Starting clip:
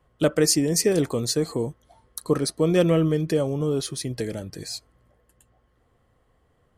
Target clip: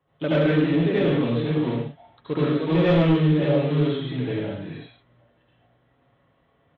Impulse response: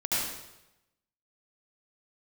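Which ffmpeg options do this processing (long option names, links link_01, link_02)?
-filter_complex "[0:a]aresample=8000,acrusher=bits=4:mode=log:mix=0:aa=0.000001,aresample=44100,highpass=94[link_01];[1:a]atrim=start_sample=2205,afade=type=out:start_time=0.3:duration=0.01,atrim=end_sample=13671[link_02];[link_01][link_02]afir=irnorm=-1:irlink=0,asoftclip=type=tanh:threshold=-5.5dB,aecho=1:1:7.2:0.36,volume=-6dB"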